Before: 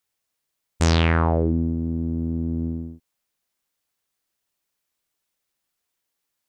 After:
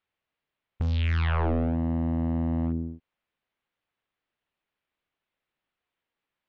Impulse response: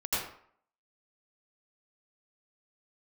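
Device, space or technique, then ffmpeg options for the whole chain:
synthesiser wavefolder: -af "aeval=exprs='0.106*(abs(mod(val(0)/0.106+3,4)-2)-1)':c=same,lowpass=f=3.2k:w=0.5412,lowpass=f=3.2k:w=1.3066"

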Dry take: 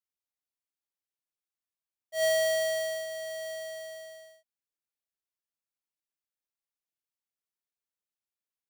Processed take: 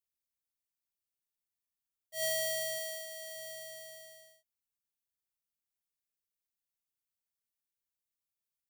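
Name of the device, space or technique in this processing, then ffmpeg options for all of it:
smiley-face EQ: -filter_complex "[0:a]asettb=1/sr,asplit=3[a][b][c];[a]atrim=end=2.784[d];[b]atrim=start=2.78:end=3.36,asetpts=PTS-STARTPTS,afade=t=in:d=0.004:c=qsin,afade=t=out:st=0.576:d=0.004:c=qsin,highpass=f=250:p=1[e];[c]atrim=start=3.356[f];[d][e]acrossfade=d=0.004:c1=hsin:c2=qsin[g];[g][f]acrossfade=d=0.004:c1=qsin:c2=hsin,lowshelf=f=170:g=7,equalizer=f=700:t=o:w=2.6:g=-8,highshelf=f=8.8k:g=8,volume=-3.5dB"

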